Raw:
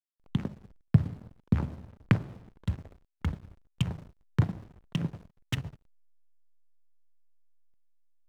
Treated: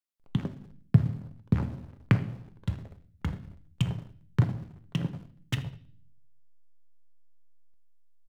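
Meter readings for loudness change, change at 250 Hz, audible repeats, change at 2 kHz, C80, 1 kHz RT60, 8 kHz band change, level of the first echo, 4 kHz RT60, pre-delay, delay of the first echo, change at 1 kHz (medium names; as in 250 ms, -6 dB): +1.0 dB, +0.5 dB, 1, +0.5 dB, 18.5 dB, 0.40 s, no reading, -21.5 dB, 0.55 s, 6 ms, 80 ms, +0.5 dB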